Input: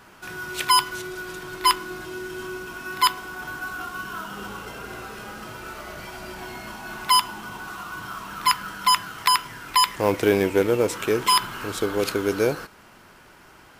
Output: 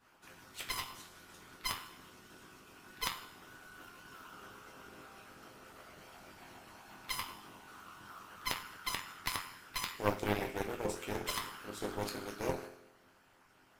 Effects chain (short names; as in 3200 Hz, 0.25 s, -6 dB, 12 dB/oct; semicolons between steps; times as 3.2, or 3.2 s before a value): resonator bank F2 minor, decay 0.84 s; added harmonics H 4 -10 dB, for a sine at -20.5 dBFS; harmonic-percussive split harmonic -17 dB; gain +8.5 dB